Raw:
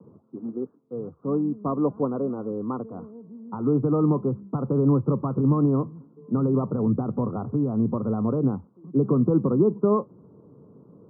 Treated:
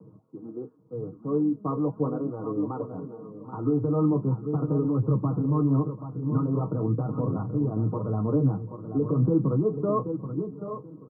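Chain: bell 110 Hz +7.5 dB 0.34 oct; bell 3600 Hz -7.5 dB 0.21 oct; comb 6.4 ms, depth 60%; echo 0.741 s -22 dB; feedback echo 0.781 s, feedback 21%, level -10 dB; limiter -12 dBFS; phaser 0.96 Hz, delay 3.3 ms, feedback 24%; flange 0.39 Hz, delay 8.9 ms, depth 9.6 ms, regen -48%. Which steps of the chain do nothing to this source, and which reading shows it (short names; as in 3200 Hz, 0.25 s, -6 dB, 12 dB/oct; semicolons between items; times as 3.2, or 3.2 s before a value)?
bell 3600 Hz: input band ends at 1300 Hz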